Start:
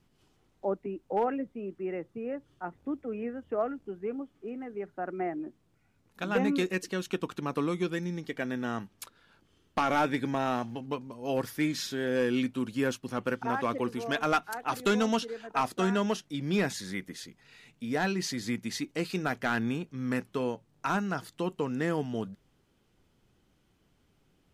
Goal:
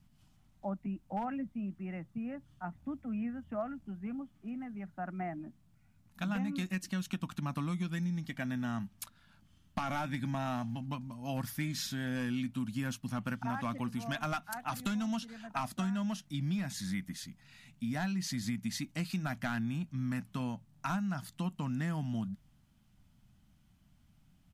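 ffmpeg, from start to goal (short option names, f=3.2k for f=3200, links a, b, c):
-af "firequalizer=gain_entry='entry(210,0);entry(430,-29);entry(620,-9);entry(12000,-3)':delay=0.05:min_phase=1,acompressor=threshold=-36dB:ratio=10,volume=5dB"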